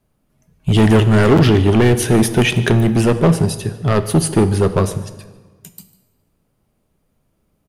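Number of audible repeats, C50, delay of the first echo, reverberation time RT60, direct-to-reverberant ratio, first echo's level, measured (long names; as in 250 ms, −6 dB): 1, 12.5 dB, 148 ms, 1.4 s, 11.0 dB, −20.5 dB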